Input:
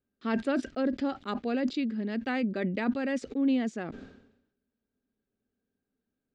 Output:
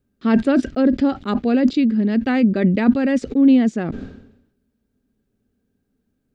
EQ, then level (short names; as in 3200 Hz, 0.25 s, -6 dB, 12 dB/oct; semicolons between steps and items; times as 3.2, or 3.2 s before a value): low shelf 280 Hz +11.5 dB; +7.5 dB